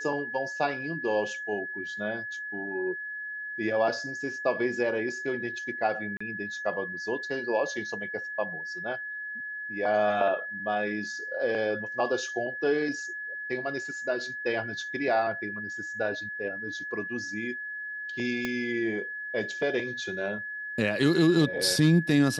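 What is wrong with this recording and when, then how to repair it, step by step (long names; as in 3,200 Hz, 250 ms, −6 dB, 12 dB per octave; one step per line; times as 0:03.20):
whistle 1,700 Hz −34 dBFS
0:06.17–0:06.21: drop-out 35 ms
0:18.45: click −16 dBFS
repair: click removal
notch filter 1,700 Hz, Q 30
repair the gap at 0:06.17, 35 ms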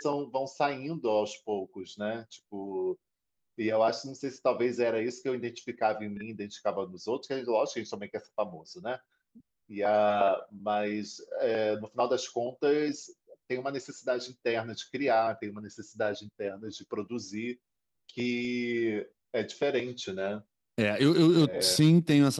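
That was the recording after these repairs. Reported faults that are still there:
0:18.45: click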